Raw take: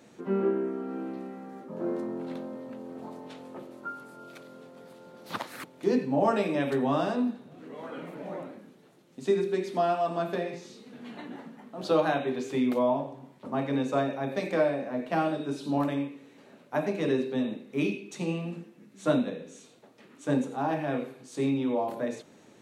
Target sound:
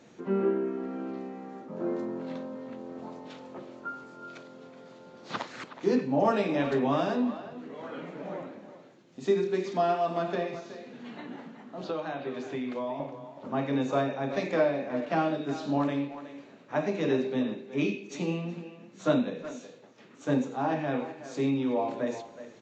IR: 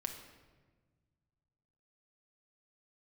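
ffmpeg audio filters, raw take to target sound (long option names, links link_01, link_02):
-filter_complex "[0:a]asettb=1/sr,asplit=3[link_01][link_02][link_03];[link_01]atrim=end=10.554[link_04];[link_02]atrim=start=10.55:end=13,asetpts=PTS-STARTPTS,afade=type=in:duration=0.004:curve=qsin,afade=type=out:start_time=2.446:duration=0.004:curve=qsin,acrossover=split=1200|3200[link_05][link_06][link_07];[link_05]acompressor=threshold=-33dB:ratio=4[link_08];[link_06]acompressor=threshold=-45dB:ratio=4[link_09];[link_07]acompressor=threshold=-59dB:ratio=4[link_10];[link_08][link_09][link_10]amix=inputs=3:normalize=0[link_11];[link_03]atrim=start=12.996[link_12];[link_04][link_11]acrossfade=duration=0.004:curve1=hsin:curve2=qsin[link_13];[link_13][link_12]acrossfade=duration=0.004:curve1=qsin:curve2=hsin,asplit=2[link_14][link_15];[link_15]adelay=370,highpass=300,lowpass=3400,asoftclip=type=hard:threshold=-21.5dB,volume=-12dB[link_16];[link_14][link_16]amix=inputs=2:normalize=0" -ar 16000 -c:a aac -b:a 32k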